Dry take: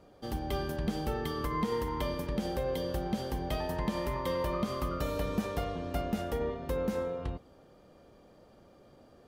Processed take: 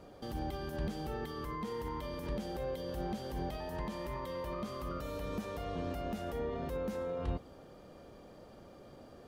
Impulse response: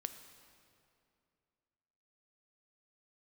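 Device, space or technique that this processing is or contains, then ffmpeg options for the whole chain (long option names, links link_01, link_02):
de-esser from a sidechain: -filter_complex "[0:a]asplit=2[link_01][link_02];[link_02]highpass=frequency=6000:poles=1,apad=whole_len=409063[link_03];[link_01][link_03]sidechaincompress=threshold=-58dB:ratio=8:attack=2.5:release=44,volume=4dB"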